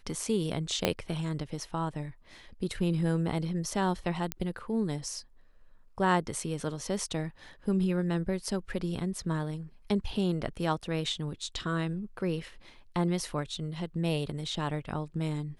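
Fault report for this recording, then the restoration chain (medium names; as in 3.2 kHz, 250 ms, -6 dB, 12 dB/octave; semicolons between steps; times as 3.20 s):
0.85 s: pop -10 dBFS
4.32 s: pop -14 dBFS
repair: de-click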